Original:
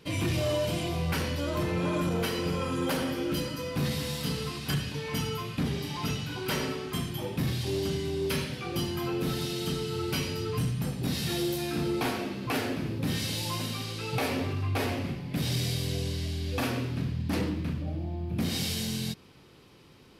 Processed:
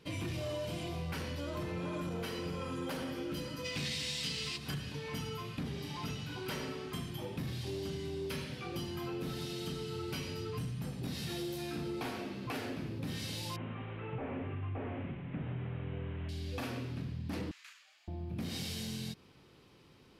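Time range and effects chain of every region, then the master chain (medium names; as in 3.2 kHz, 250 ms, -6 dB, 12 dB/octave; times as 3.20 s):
3.64–4.56 s: high-order bell 4.1 kHz +13 dB 2.5 oct + crackle 590 per s -37 dBFS
13.56–16.29 s: one-bit delta coder 16 kbps, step -41 dBFS + distance through air 110 m
17.51–18.08 s: high-pass 1.4 kHz 24 dB/octave + peaking EQ 7 kHz +13 dB 0.38 oct
whole clip: treble shelf 9.3 kHz -5 dB; compression 3:1, threshold -31 dBFS; trim -5.5 dB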